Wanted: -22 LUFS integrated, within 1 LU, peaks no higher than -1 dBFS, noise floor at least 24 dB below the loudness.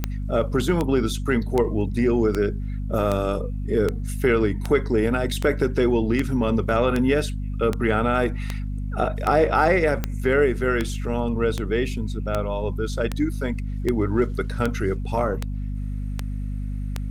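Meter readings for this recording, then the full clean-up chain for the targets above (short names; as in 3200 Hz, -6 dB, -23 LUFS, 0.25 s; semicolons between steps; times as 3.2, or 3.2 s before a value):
clicks 23; hum 50 Hz; harmonics up to 250 Hz; hum level -25 dBFS; loudness -23.5 LUFS; peak -6.5 dBFS; loudness target -22.0 LUFS
-> de-click; notches 50/100/150/200/250 Hz; gain +1.5 dB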